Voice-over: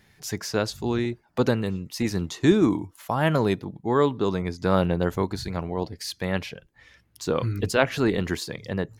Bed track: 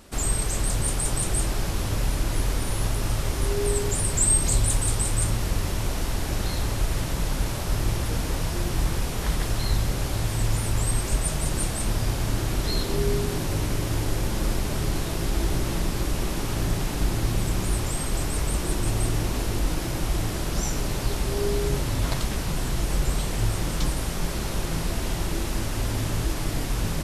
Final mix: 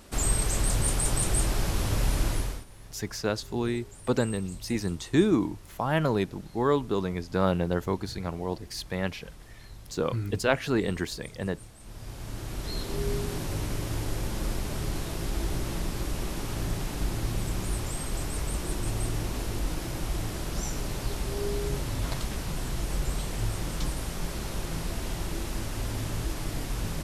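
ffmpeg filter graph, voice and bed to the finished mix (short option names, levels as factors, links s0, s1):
-filter_complex "[0:a]adelay=2700,volume=0.668[s0];[1:a]volume=6.68,afade=t=out:st=2.26:d=0.39:silence=0.0794328,afade=t=in:st=11.8:d=1.33:silence=0.133352[s1];[s0][s1]amix=inputs=2:normalize=0"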